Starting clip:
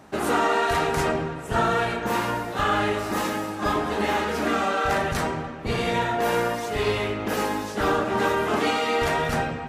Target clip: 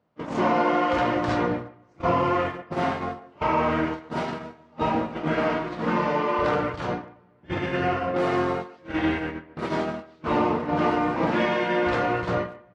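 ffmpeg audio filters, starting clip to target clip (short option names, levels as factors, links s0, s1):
-filter_complex "[0:a]highpass=110,lowpass=4800,agate=range=0.0794:threshold=0.0562:ratio=16:detection=peak,asplit=2[s0][s1];[s1]adelay=110,highpass=300,lowpass=3400,asoftclip=type=hard:threshold=0.1,volume=0.158[s2];[s0][s2]amix=inputs=2:normalize=0,asetrate=33516,aresample=44100"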